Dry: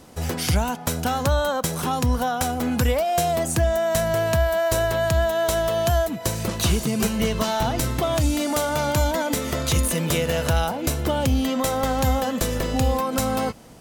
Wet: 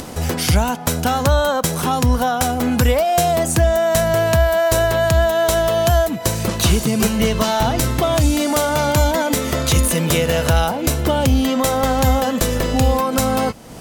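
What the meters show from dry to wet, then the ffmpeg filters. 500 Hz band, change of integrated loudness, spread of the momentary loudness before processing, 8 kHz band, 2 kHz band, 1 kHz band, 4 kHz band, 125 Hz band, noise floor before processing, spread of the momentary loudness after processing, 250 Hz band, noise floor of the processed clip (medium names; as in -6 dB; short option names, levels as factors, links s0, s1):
+5.5 dB, +5.5 dB, 4 LU, +5.5 dB, +5.5 dB, +5.5 dB, +5.5 dB, +5.5 dB, -31 dBFS, 4 LU, +5.5 dB, -26 dBFS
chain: -af "acompressor=mode=upward:threshold=0.0398:ratio=2.5,volume=1.88"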